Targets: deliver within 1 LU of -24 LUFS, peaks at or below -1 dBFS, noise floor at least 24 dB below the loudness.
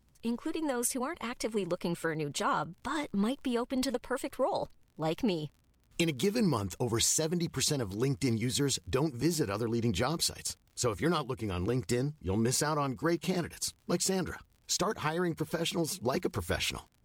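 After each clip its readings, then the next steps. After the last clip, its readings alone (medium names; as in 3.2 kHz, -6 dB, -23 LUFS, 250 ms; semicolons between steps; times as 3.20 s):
tick rate 38 per s; loudness -32.0 LUFS; peak level -16.0 dBFS; loudness target -24.0 LUFS
-> de-click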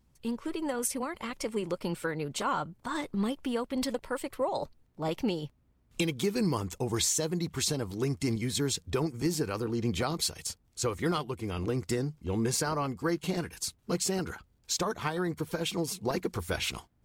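tick rate 0.29 per s; loudness -32.0 LUFS; peak level -16.0 dBFS; loudness target -24.0 LUFS
-> trim +8 dB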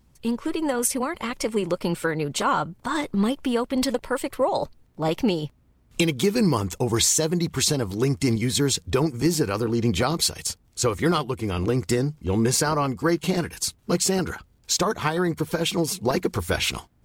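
loudness -24.0 LUFS; peak level -8.0 dBFS; noise floor -60 dBFS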